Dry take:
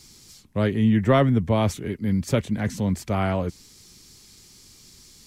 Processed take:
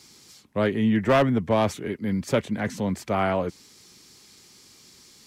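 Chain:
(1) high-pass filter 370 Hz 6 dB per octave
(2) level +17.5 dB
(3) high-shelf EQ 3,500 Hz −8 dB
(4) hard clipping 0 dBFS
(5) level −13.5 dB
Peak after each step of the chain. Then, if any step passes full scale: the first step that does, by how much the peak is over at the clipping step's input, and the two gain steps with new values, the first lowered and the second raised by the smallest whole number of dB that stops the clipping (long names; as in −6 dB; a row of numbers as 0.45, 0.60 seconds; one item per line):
−8.0, +9.5, +8.5, 0.0, −13.5 dBFS
step 2, 8.5 dB
step 2 +8.5 dB, step 5 −4.5 dB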